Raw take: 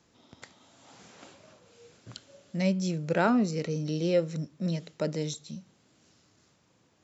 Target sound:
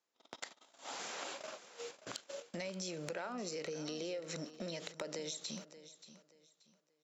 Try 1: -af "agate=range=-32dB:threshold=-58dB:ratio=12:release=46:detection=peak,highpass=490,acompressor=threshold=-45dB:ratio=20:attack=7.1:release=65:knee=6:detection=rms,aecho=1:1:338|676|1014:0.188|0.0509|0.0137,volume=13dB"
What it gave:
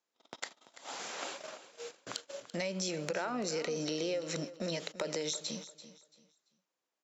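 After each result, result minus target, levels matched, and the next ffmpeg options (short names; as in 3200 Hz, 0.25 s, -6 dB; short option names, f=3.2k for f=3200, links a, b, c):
echo 0.242 s early; compressor: peak gain reduction -6.5 dB
-af "agate=range=-32dB:threshold=-58dB:ratio=12:release=46:detection=peak,highpass=490,acompressor=threshold=-45dB:ratio=20:attack=7.1:release=65:knee=6:detection=rms,aecho=1:1:580|1160|1740:0.188|0.0509|0.0137,volume=13dB"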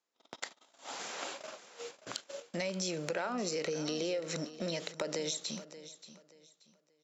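compressor: peak gain reduction -6.5 dB
-af "agate=range=-32dB:threshold=-58dB:ratio=12:release=46:detection=peak,highpass=490,acompressor=threshold=-52dB:ratio=20:attack=7.1:release=65:knee=6:detection=rms,aecho=1:1:580|1160|1740:0.188|0.0509|0.0137,volume=13dB"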